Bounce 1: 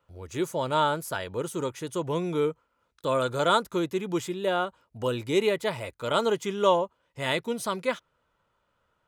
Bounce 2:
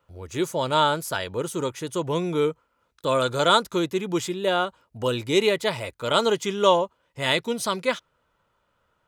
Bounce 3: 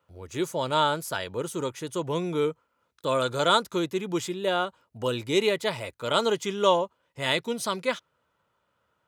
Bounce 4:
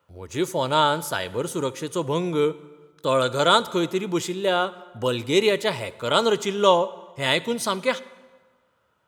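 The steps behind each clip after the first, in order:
dynamic bell 4.7 kHz, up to +6 dB, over -44 dBFS, Q 0.75; trim +3 dB
high-pass 78 Hz; trim -3 dB
plate-style reverb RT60 1.4 s, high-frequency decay 0.75×, DRR 16 dB; trim +4 dB

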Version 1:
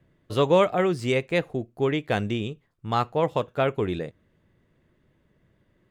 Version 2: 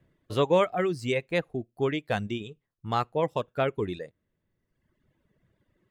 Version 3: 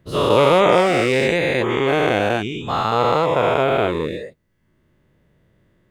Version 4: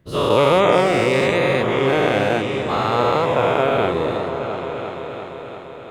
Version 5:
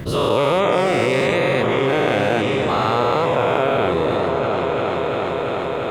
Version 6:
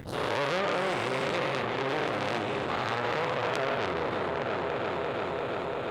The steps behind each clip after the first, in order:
reverb removal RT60 1.3 s; trim -2.5 dB
every event in the spectrogram widened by 480 ms; trim +2.5 dB
delay with an opening low-pass 344 ms, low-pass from 400 Hz, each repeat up 2 oct, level -6 dB; trim -1 dB
level flattener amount 70%; trim -3.5 dB
transformer saturation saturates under 3.4 kHz; trim -7 dB

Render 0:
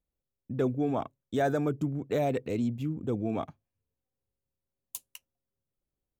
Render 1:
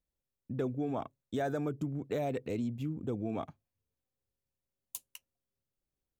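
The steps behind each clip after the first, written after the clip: compression 2.5:1, threshold -29 dBFS, peak gain reduction 4.5 dB; trim -2.5 dB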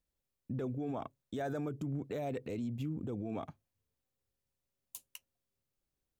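peak limiter -32 dBFS, peak gain reduction 9 dB; trim +1.5 dB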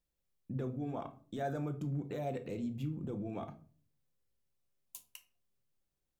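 simulated room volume 320 m³, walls furnished, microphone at 0.82 m; trim -2 dB

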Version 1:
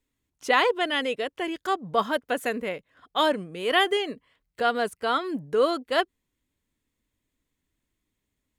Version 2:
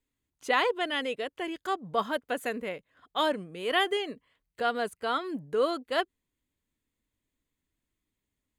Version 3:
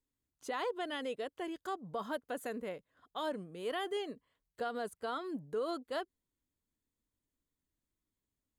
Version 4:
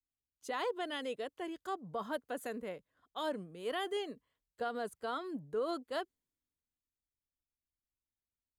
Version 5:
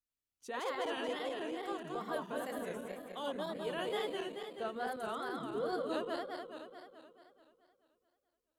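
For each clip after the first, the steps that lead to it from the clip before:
band-stop 5.5 kHz, Q 11; trim -4.5 dB
peaking EQ 2.4 kHz -7.5 dB 1 oct; peak limiter -23.5 dBFS, peak gain reduction 8 dB; trim -5 dB
three bands expanded up and down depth 40%
backward echo that repeats 108 ms, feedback 77%, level -1 dB; wow and flutter 130 cents; trim -4 dB

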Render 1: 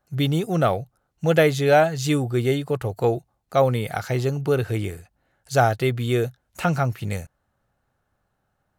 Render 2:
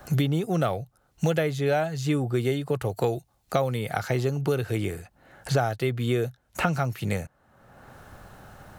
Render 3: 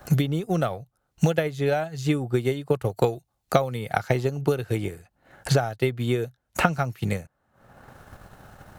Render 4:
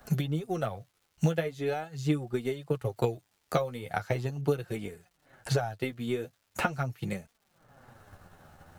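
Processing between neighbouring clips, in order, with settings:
three bands compressed up and down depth 100%; trim -4.5 dB
transient shaper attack +7 dB, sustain -7 dB; trim -1 dB
crackle 380 per s -50 dBFS; flange 0.41 Hz, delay 4.1 ms, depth 9.1 ms, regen +19%; trim -3.5 dB

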